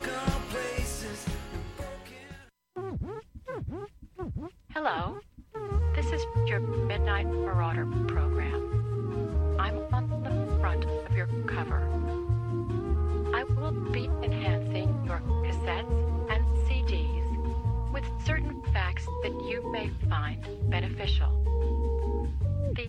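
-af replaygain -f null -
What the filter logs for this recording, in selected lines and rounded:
track_gain = +14.9 dB
track_peak = 0.138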